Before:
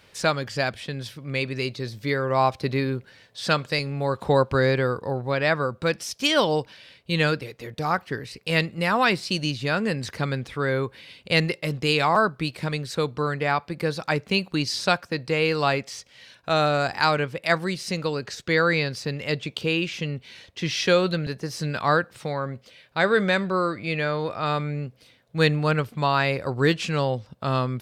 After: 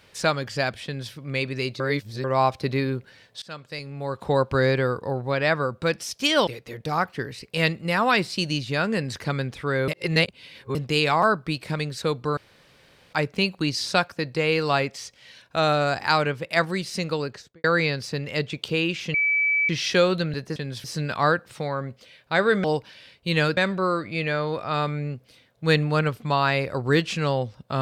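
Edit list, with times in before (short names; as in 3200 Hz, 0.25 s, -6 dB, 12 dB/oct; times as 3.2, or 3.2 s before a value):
0.85–1.13 copy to 21.49
1.8–2.24 reverse
3.42–4.63 fade in, from -22.5 dB
6.47–7.4 move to 23.29
10.81–11.68 reverse
13.3–14.06 room tone
18.14–18.57 studio fade out
20.07–20.62 bleep 2300 Hz -18.5 dBFS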